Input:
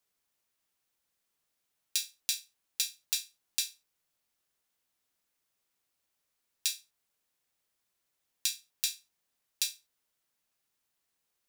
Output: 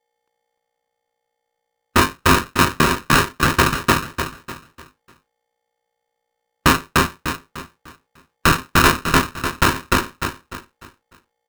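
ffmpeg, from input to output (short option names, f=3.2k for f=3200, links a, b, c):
-af "afftdn=nr=34:nf=-58,aecho=1:1:5.7:0.75,flanger=delay=7.5:depth=8.4:regen=41:speed=1.5:shape=triangular,acrusher=samples=26:mix=1:aa=0.000001,asoftclip=type=tanh:threshold=-20.5dB,flanger=delay=19:depth=7.2:speed=0.51,aeval=exprs='val(0)+0.000158*(sin(2*PI*60*n/s)+sin(2*PI*2*60*n/s)/2+sin(2*PI*3*60*n/s)/3+sin(2*PI*4*60*n/s)/4+sin(2*PI*5*60*n/s)/5)':c=same,aecho=1:1:299|598|897|1196|1495:0.708|0.248|0.0867|0.0304|0.0106,highpass=f=450:t=q:w=0.5412,highpass=f=450:t=q:w=1.307,lowpass=f=2k:t=q:w=0.5176,lowpass=f=2k:t=q:w=0.7071,lowpass=f=2k:t=q:w=1.932,afreqshift=-110,alimiter=level_in=32.5dB:limit=-1dB:release=50:level=0:latency=1,aeval=exprs='val(0)*sgn(sin(2*PI*660*n/s))':c=same,volume=-2dB"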